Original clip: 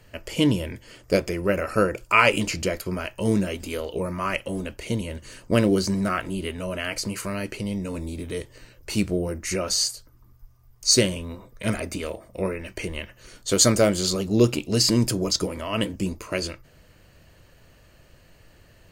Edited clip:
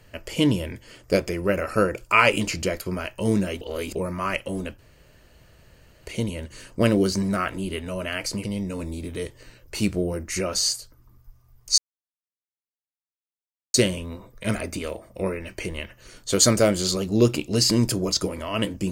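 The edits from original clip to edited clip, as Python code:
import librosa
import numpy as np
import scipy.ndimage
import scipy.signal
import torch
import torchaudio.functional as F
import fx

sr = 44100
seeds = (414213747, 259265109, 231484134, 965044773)

y = fx.edit(x, sr, fx.reverse_span(start_s=3.61, length_s=0.34),
    fx.insert_room_tone(at_s=4.79, length_s=1.28),
    fx.cut(start_s=7.16, length_s=0.43),
    fx.insert_silence(at_s=10.93, length_s=1.96), tone=tone)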